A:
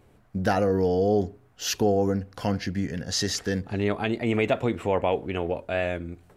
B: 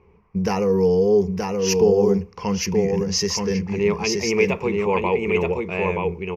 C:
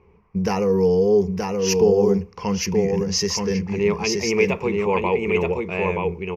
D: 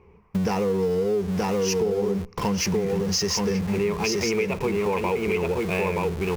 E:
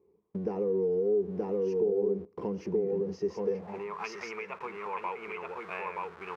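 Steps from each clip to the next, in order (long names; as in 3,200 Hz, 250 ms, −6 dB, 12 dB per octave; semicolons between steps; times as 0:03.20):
EQ curve with evenly spaced ripples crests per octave 0.8, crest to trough 16 dB; low-pass that shuts in the quiet parts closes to 2,400 Hz, open at −17 dBFS; single-tap delay 926 ms −3.5 dB
no processing that can be heard
in parallel at −12 dB: comparator with hysteresis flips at −33.5 dBFS; on the sum: downward compressor, threshold −23 dBFS, peak gain reduction 11.5 dB; level +1.5 dB
mu-law and A-law mismatch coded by A; band-pass filter sweep 360 Hz → 1,300 Hz, 0:03.31–0:04.01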